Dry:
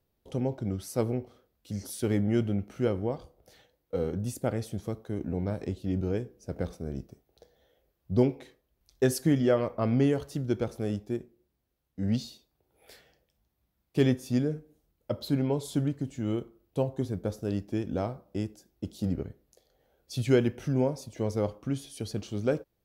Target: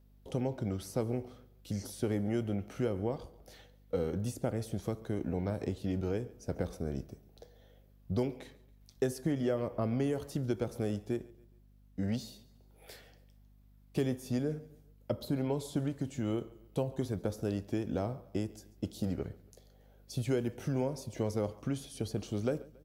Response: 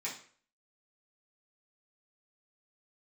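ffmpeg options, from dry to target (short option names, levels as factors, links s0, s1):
-filter_complex "[0:a]acrossover=split=500|1100|7500[s0][s1][s2][s3];[s0]acompressor=threshold=0.0178:ratio=4[s4];[s1]acompressor=threshold=0.00891:ratio=4[s5];[s2]acompressor=threshold=0.00224:ratio=4[s6];[s3]acompressor=threshold=0.00178:ratio=4[s7];[s4][s5][s6][s7]amix=inputs=4:normalize=0,aeval=exprs='val(0)+0.000708*(sin(2*PI*50*n/s)+sin(2*PI*2*50*n/s)/2+sin(2*PI*3*50*n/s)/3+sin(2*PI*4*50*n/s)/4+sin(2*PI*5*50*n/s)/5)':c=same,asplit=2[s8][s9];[s9]aecho=0:1:139|278|417:0.0841|0.0345|0.0141[s10];[s8][s10]amix=inputs=2:normalize=0,volume=1.33"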